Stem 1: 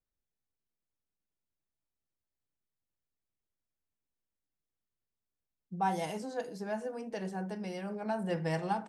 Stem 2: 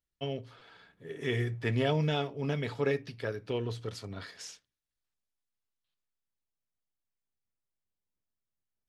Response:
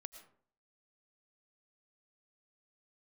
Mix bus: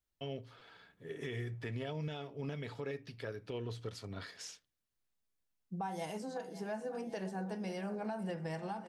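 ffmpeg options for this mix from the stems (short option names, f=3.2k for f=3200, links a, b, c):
-filter_complex "[0:a]volume=-0.5dB,asplit=2[a][b];[b]volume=-16.5dB[c];[1:a]volume=-2.5dB[d];[c]aecho=0:1:549|1098|1647|2196|2745|3294|3843|4392:1|0.56|0.314|0.176|0.0983|0.0551|0.0308|0.0173[e];[a][d][e]amix=inputs=3:normalize=0,alimiter=level_in=7dB:limit=-24dB:level=0:latency=1:release=275,volume=-7dB"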